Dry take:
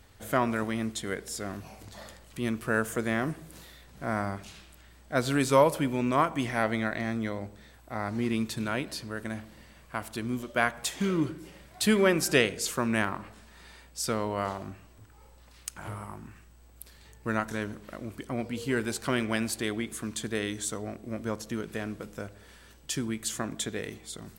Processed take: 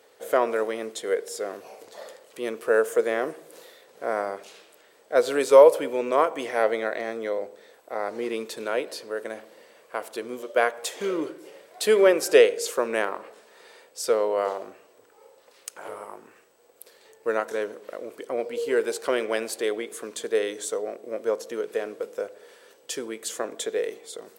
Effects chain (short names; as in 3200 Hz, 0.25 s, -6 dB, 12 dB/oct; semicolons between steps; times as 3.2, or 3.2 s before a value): resonant high-pass 470 Hz, resonance Q 4.9